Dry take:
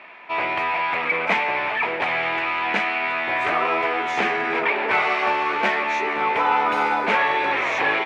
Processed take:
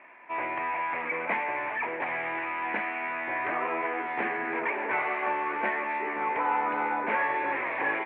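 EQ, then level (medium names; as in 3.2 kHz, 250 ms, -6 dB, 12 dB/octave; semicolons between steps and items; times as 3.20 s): distance through air 54 m; cabinet simulation 160–2000 Hz, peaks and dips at 190 Hz -9 dB, 430 Hz -6 dB, 660 Hz -4 dB, 1.3 kHz -9 dB; peaking EQ 800 Hz -3 dB 0.39 oct; -3.0 dB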